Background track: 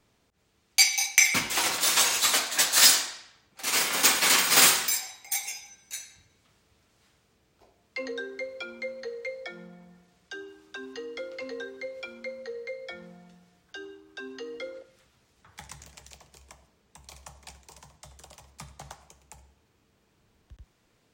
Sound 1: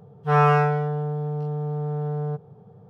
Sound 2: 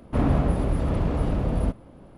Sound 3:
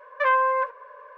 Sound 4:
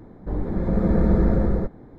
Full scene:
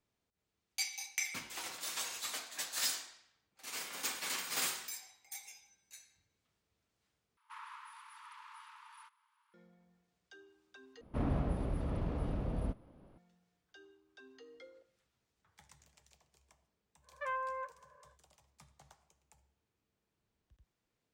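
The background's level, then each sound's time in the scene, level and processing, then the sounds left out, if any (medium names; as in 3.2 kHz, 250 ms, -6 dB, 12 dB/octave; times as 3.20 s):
background track -17.5 dB
7.37 s: replace with 2 -12.5 dB + brick-wall FIR high-pass 860 Hz
11.01 s: replace with 2 -12.5 dB + peaking EQ 7.4 kHz -5.5 dB 0.33 oct
17.01 s: add 3 -17.5 dB, fades 0.10 s
not used: 1, 4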